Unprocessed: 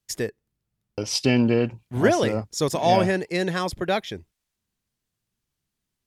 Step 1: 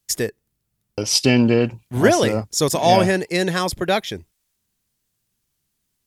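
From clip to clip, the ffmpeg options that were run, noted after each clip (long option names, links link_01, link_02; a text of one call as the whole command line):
ffmpeg -i in.wav -af "highshelf=frequency=6100:gain=9,volume=4dB" out.wav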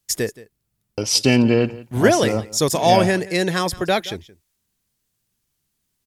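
ffmpeg -i in.wav -af "aecho=1:1:173:0.106" out.wav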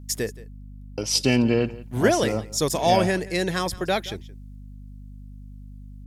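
ffmpeg -i in.wav -af "aeval=exprs='val(0)+0.0178*(sin(2*PI*50*n/s)+sin(2*PI*2*50*n/s)/2+sin(2*PI*3*50*n/s)/3+sin(2*PI*4*50*n/s)/4+sin(2*PI*5*50*n/s)/5)':channel_layout=same,volume=-4.5dB" out.wav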